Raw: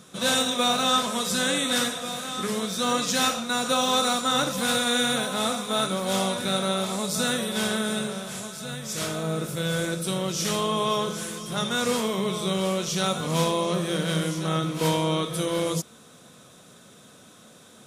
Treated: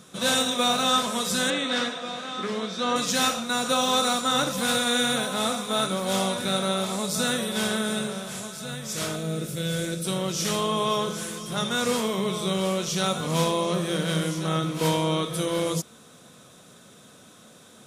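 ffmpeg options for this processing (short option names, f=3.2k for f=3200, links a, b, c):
-filter_complex "[0:a]asettb=1/sr,asplit=3[a][b][c];[a]atrim=end=1.504[d];[b]atrim=start=1.5:end=2.96,asetpts=PTS-STARTPTS,afade=t=in:d=0.004:c=qsin,afade=t=out:st=1.456:d=0.004:c=qsin,highpass=200,lowpass=4.2k[e];[c]atrim=start=2.956[f];[d][e]acrossfade=d=0.004:c1=hsin:c2=qsin[g];[g][f]acrossfade=d=0.004:c1=qsin:c2=hsin,asettb=1/sr,asplit=3[h][i][j];[h]atrim=end=9.164[k];[i]atrim=start=9.16:end=10.05,asetpts=PTS-STARTPTS,afade=t=in:d=0.004:c=qsin,afade=t=out:st=0.886:d=0.004:c=qsin,equalizer=f=1k:w=1.2:g=-10[l];[j]atrim=start=10.046[m];[k][l]acrossfade=d=0.004:c1=hsin:c2=qsin[n];[n][m]acrossfade=d=0.004:c1=qsin:c2=hsin"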